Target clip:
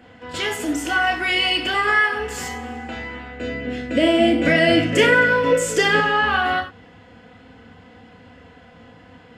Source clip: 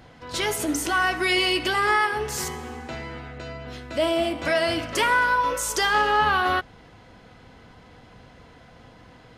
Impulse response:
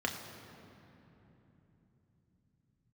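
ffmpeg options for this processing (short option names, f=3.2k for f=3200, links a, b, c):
-filter_complex "[0:a]asettb=1/sr,asplit=3[a][b][c];[a]atrim=end=3.404[d];[b]atrim=start=3.4:end=6,asetpts=PTS-STARTPTS,afade=t=in:d=0.004:c=qsin,afade=t=out:st=2.596:d=0.004:c=qsin,equalizer=f=125:t=o:w=1:g=8,equalizer=f=250:t=o:w=1:g=8,equalizer=f=500:t=o:w=1:g=9,equalizer=f=1k:t=o:w=1:g=-8,equalizer=f=2k:t=o:w=1:g=6,equalizer=f=8k:t=o:w=1:g=4[e];[c]atrim=start=5.996[f];[d][e]acrossfade=d=0.004:c1=hsin:c2=qsin[g];[g][f]acrossfade=d=0.004:c1=qsin:c2=hsin[h];[1:a]atrim=start_sample=2205,afade=t=out:st=0.15:d=0.01,atrim=end_sample=7056[i];[h][i]afir=irnorm=-1:irlink=0,volume=-2.5dB"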